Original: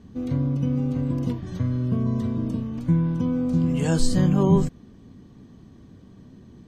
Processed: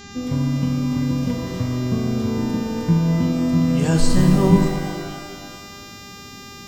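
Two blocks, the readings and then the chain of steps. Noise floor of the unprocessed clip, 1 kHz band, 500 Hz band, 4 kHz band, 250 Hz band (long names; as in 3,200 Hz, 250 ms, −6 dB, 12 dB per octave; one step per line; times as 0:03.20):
−49 dBFS, +6.5 dB, +4.0 dB, +8.5 dB, +4.0 dB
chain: hum with harmonics 400 Hz, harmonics 18, −45 dBFS −2 dB per octave
reverb with rising layers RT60 1.8 s, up +12 semitones, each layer −8 dB, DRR 4 dB
level +2.5 dB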